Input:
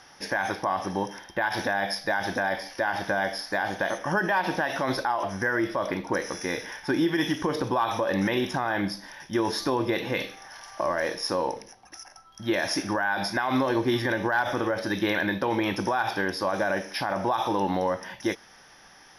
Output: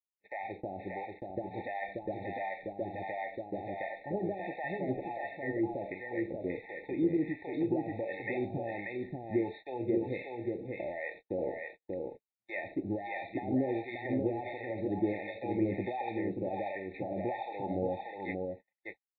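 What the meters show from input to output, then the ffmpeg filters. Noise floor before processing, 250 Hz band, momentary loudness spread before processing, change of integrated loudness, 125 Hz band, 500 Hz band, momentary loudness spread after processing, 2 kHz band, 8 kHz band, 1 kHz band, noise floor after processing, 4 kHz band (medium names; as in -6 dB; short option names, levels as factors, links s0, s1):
-53 dBFS, -6.0 dB, 6 LU, -9.0 dB, -6.5 dB, -7.0 dB, 8 LU, -14.5 dB, under -40 dB, -12.5 dB, under -85 dBFS, under -20 dB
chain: -filter_complex "[0:a]acrossover=split=640[s0][s1];[s0]aeval=exprs='val(0)*(1-1/2+1/2*cos(2*PI*1.4*n/s))':c=same[s2];[s1]aeval=exprs='val(0)*(1-1/2-1/2*cos(2*PI*1.4*n/s))':c=same[s3];[s2][s3]amix=inputs=2:normalize=0,equalizer=f=100:t=o:w=0.67:g=4,equalizer=f=400:t=o:w=0.67:g=5,equalizer=f=1600:t=o:w=0.67:g=4,aresample=8000,aeval=exprs='sgn(val(0))*max(abs(val(0))-0.00133,0)':c=same,aresample=44100,acrossover=split=3100[s4][s5];[s5]acompressor=threshold=0.002:ratio=4:attack=1:release=60[s6];[s4][s6]amix=inputs=2:normalize=0,aecho=1:1:584:0.668,agate=range=0.01:threshold=0.0112:ratio=16:detection=peak,afftfilt=real='re*eq(mod(floor(b*sr/1024/890),2),0)':imag='im*eq(mod(floor(b*sr/1024/890),2),0)':win_size=1024:overlap=0.75,volume=0.531"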